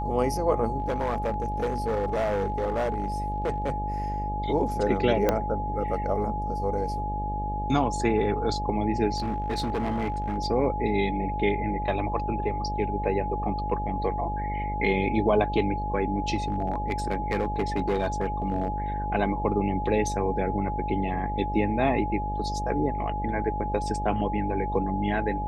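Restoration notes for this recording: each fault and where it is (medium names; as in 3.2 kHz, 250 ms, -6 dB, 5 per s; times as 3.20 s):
buzz 50 Hz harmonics 15 -32 dBFS
whine 840 Hz -30 dBFS
0.78–3.76 s: clipped -22.5 dBFS
5.29 s: pop -9 dBFS
9.16–10.38 s: clipped -23.5 dBFS
16.35–18.68 s: clipped -20.5 dBFS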